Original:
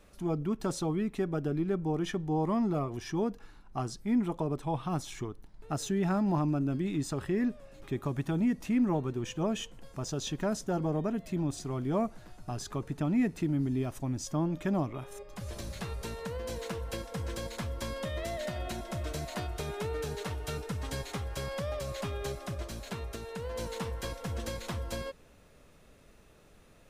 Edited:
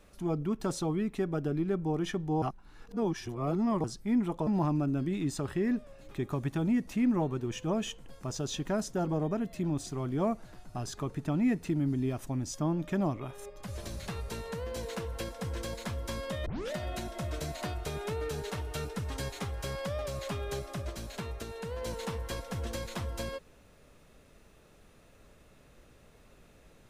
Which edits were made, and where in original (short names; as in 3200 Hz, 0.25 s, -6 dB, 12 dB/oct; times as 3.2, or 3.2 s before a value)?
2.42–3.84 reverse
4.47–6.2 cut
18.19 tape start 0.26 s